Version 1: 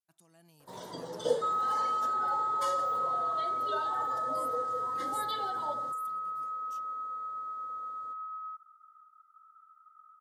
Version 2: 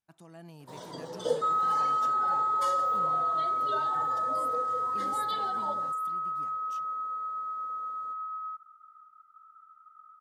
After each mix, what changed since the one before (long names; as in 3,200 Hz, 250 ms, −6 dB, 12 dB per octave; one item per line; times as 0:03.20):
speech: remove first-order pre-emphasis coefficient 0.8
second sound +3.5 dB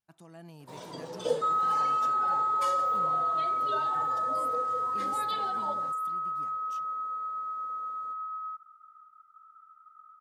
first sound: remove Butterworth band-reject 2,500 Hz, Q 3.7